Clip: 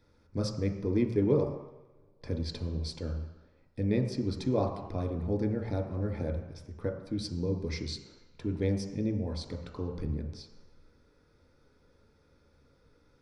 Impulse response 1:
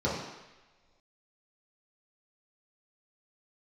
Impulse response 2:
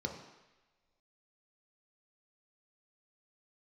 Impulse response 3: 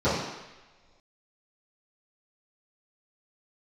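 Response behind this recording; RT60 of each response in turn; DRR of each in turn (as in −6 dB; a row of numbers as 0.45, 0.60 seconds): 2; non-exponential decay, non-exponential decay, non-exponential decay; −8.0, 1.5, −16.0 decibels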